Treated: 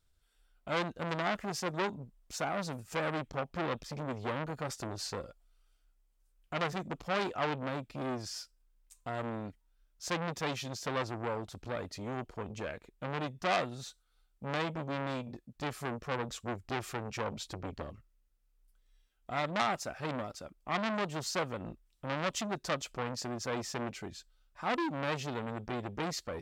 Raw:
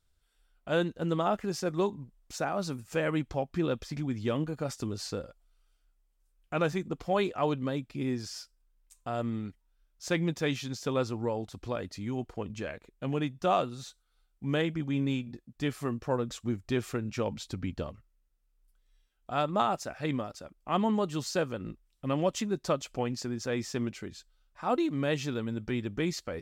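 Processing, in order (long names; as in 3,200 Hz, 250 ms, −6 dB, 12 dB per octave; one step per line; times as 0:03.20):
saturating transformer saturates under 2,600 Hz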